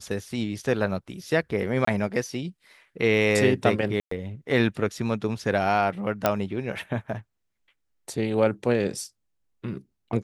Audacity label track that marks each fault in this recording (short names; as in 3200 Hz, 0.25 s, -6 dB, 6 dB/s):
1.850000	1.870000	gap 24 ms
4.000000	4.110000	gap 0.114 s
6.260000	6.260000	pop -6 dBFS